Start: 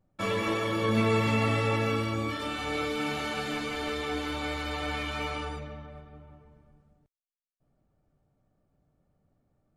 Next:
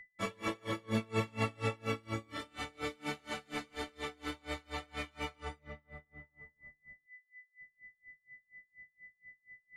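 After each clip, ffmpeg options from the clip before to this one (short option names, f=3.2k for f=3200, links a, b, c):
-af "aeval=exprs='val(0)+0.00562*sin(2*PI*2000*n/s)':c=same,equalizer=f=8.1k:w=1.4:g=4,aeval=exprs='val(0)*pow(10,-31*(0.5-0.5*cos(2*PI*4.2*n/s))/20)':c=same,volume=-3.5dB"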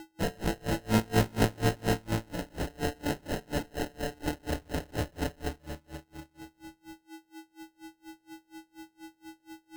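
-af "acrusher=samples=38:mix=1:aa=0.000001,volume=8dB"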